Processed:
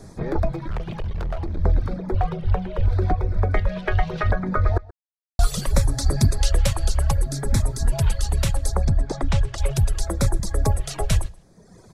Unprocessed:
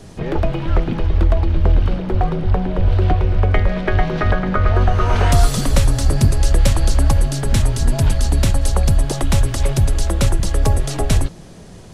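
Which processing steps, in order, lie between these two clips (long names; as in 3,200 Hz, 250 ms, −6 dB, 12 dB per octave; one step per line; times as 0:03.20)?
reverb reduction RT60 1.3 s
0:00.51–0:01.59: hard clipping −20 dBFS, distortion −15 dB
0:05.91–0:06.51: dynamic equaliser 3,600 Hz, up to +7 dB, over −44 dBFS, Q 0.77
auto-filter notch square 0.7 Hz 270–2,900 Hz
0:04.78–0:05.39: silence
0:08.77–0:09.58: high-frequency loss of the air 100 metres
slap from a distant wall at 22 metres, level −22 dB
level −3 dB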